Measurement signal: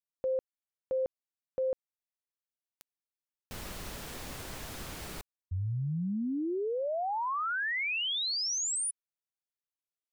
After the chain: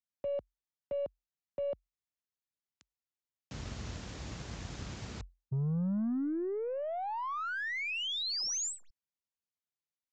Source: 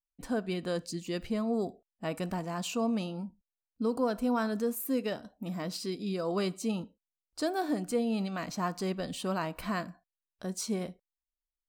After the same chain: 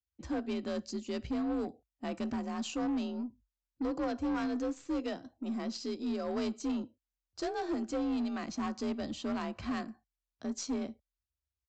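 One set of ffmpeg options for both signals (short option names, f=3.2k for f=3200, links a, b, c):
-af "bass=f=250:g=7,treble=f=4k:g=2,afreqshift=44,aeval=exprs='0.168*(cos(1*acos(clip(val(0)/0.168,-1,1)))-cos(1*PI/2))+0.00668*(cos(3*acos(clip(val(0)/0.168,-1,1)))-cos(3*PI/2))+0.0531*(cos(5*acos(clip(val(0)/0.168,-1,1)))-cos(5*PI/2))+0.00473*(cos(6*acos(clip(val(0)/0.168,-1,1)))-cos(6*PI/2))+0.0422*(cos(7*acos(clip(val(0)/0.168,-1,1)))-cos(7*PI/2))':c=same,aresample=16000,asoftclip=type=tanh:threshold=-26.5dB,aresample=44100,volume=-2.5dB"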